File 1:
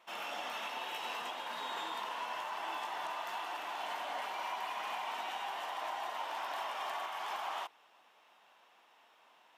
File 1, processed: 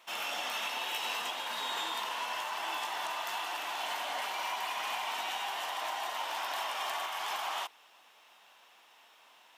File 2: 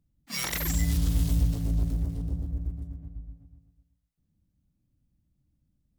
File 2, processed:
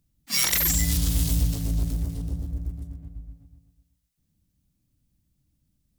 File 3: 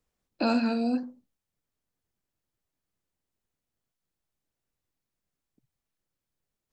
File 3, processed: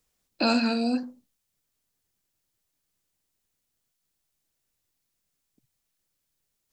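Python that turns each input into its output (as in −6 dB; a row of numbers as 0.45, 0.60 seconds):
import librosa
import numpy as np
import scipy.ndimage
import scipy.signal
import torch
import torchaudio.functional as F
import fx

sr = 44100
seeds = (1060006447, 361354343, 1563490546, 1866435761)

y = fx.high_shelf(x, sr, hz=2500.0, db=10.5)
y = y * 10.0 ** (1.0 / 20.0)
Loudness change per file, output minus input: +4.5, +4.5, +2.0 LU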